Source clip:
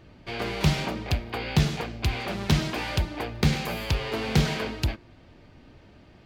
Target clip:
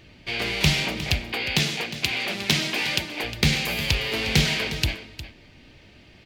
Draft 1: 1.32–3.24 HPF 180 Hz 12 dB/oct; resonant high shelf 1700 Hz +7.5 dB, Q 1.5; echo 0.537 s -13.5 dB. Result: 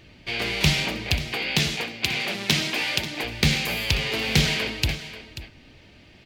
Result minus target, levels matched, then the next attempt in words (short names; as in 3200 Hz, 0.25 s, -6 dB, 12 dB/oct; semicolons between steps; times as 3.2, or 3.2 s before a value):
echo 0.179 s late
1.32–3.24 HPF 180 Hz 12 dB/oct; resonant high shelf 1700 Hz +7.5 dB, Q 1.5; echo 0.358 s -13.5 dB